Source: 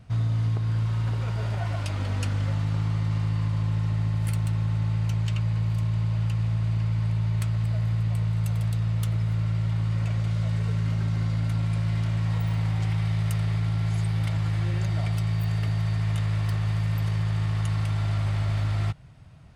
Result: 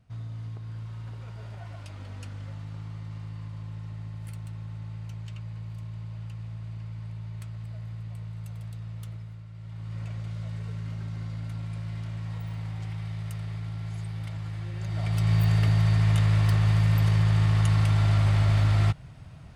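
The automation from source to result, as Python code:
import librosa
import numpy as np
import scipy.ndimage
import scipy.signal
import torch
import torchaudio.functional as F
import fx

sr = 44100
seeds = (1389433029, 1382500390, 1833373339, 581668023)

y = fx.gain(x, sr, db=fx.line((9.1, -12.5), (9.48, -19.0), (9.98, -9.0), (14.74, -9.0), (15.33, 4.0)))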